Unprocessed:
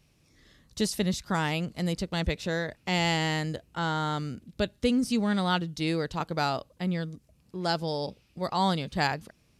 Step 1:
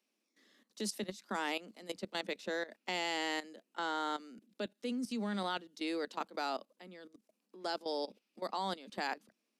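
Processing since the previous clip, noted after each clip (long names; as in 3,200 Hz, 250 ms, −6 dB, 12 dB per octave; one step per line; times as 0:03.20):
Butterworth high-pass 200 Hz 96 dB per octave
output level in coarse steps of 16 dB
level −4 dB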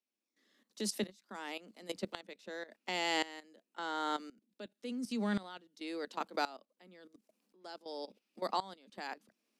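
tremolo with a ramp in dB swelling 0.93 Hz, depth 19 dB
level +5 dB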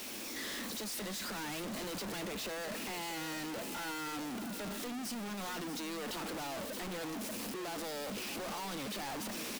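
sign of each sample alone
single-tap delay 634 ms −11 dB
level +1 dB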